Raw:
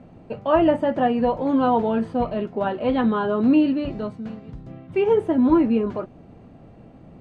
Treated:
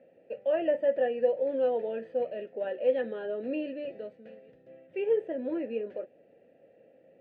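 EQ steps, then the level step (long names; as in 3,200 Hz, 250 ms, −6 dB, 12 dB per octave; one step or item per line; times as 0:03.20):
formant filter e
low-shelf EQ 86 Hz −9 dB
+1.5 dB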